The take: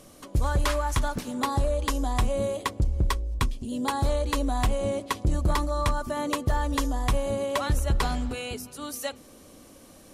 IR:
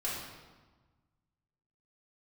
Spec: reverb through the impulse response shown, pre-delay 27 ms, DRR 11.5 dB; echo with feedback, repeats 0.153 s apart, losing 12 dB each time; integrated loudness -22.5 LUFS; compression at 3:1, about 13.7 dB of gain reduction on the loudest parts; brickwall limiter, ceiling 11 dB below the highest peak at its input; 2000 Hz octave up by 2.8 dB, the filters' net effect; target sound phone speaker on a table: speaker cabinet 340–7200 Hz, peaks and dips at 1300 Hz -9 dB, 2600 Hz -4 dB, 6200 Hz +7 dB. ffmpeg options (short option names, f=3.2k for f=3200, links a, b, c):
-filter_complex "[0:a]equalizer=f=2k:t=o:g=6,acompressor=threshold=-39dB:ratio=3,alimiter=level_in=8dB:limit=-24dB:level=0:latency=1,volume=-8dB,aecho=1:1:153|306|459:0.251|0.0628|0.0157,asplit=2[a][b];[1:a]atrim=start_sample=2205,adelay=27[c];[b][c]afir=irnorm=-1:irlink=0,volume=-16dB[d];[a][d]amix=inputs=2:normalize=0,highpass=f=340:w=0.5412,highpass=f=340:w=1.3066,equalizer=f=1.3k:t=q:w=4:g=-9,equalizer=f=2.6k:t=q:w=4:g=-4,equalizer=f=6.2k:t=q:w=4:g=7,lowpass=f=7.2k:w=0.5412,lowpass=f=7.2k:w=1.3066,volume=22dB"